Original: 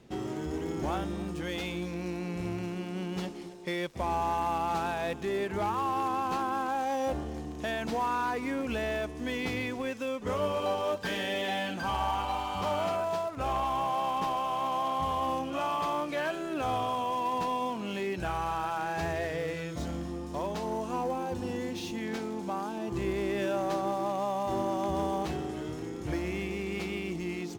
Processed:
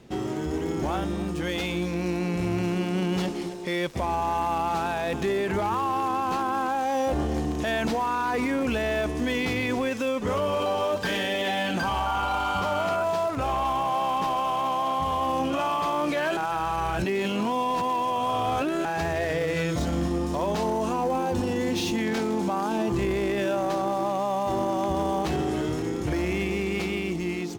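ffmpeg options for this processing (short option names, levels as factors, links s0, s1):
-filter_complex "[0:a]asettb=1/sr,asplit=3[s0][s1][s2];[s0]atrim=end=12.064[s3];[s1]atrim=start=12.06:end=13.02,asetpts=PTS-STARTPTS,afade=t=in:d=0.004:c=qsin,afade=t=out:st=0.956:d=0.004:c=qsin,aeval=exprs='val(0)+0.0178*sin(2*PI*1400*n/s)':c=same[s4];[s2]atrim=start=13.016[s5];[s3][s4]acrossfade=d=0.004:c1=hsin:c2=qsin[s6];[s6][s5]acrossfade=d=0.004:c1=qsin:c2=hsin,asplit=3[s7][s8][s9];[s7]atrim=end=16.372[s10];[s8]atrim=start=16.368:end=18.852,asetpts=PTS-STARTPTS,areverse[s11];[s9]atrim=start=18.848[s12];[s10][s11]acrossfade=d=0.004:c1=hsin:c2=hsin[s13];[s13][s12]acrossfade=d=0.004:c1=hsin:c2=hsin,dynaudnorm=f=550:g=9:m=2,alimiter=limit=0.0631:level=0:latency=1:release=15,volume=1.88"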